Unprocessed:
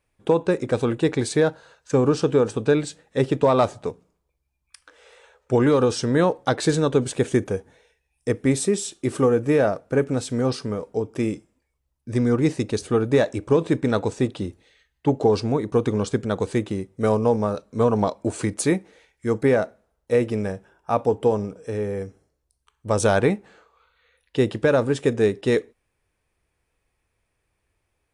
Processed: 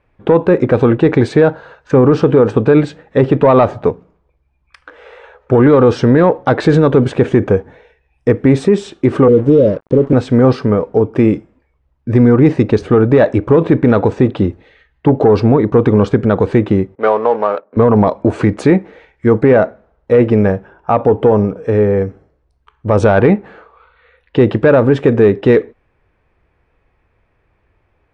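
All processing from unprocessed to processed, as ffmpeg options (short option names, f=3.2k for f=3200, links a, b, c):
-filter_complex "[0:a]asettb=1/sr,asplit=3[a][b][c];[a]atrim=end=9.284[d];[b]atrim=start=9.28:end=10.13,asetpts=PTS-STARTPTS,afade=t=in:d=0.004:c=qsin,afade=t=out:st=0.846:d=0.004:c=qsin,asuperstop=centerf=1300:order=20:qfactor=0.57,acompressor=mode=upward:threshold=-30dB:ratio=2.5:attack=3.2:release=140:knee=2.83:detection=peak,aeval=exprs='sgn(val(0))*max(abs(val(0))-0.00631,0)':c=same[e];[c]atrim=start=10.126[f];[d][e]acrossfade=d=0.004:c1=hsin:c2=qsin[g];[g][f]acrossfade=d=0.004:c1=qsin:c2=hsin,asettb=1/sr,asplit=3[h][i][j];[h]atrim=end=16.954[k];[i]atrim=start=16.95:end=17.77,asetpts=PTS-STARTPTS,afade=t=in:d=0.004:c=qsin,afade=t=out:st=0.816:d=0.004:c=qsin,adynamicsmooth=sensitivity=8:basefreq=840,highpass=600,lowpass=5.4k[l];[j]atrim=start=17.766[m];[k][l]acrossfade=d=0.004:c1=hsin:c2=qsin[n];[n][m]acrossfade=d=0.004:c1=qsin:c2=hsin,lowpass=2k,acontrast=62,alimiter=level_in=9.5dB:limit=-1dB:release=50:level=0:latency=1,volume=-1dB"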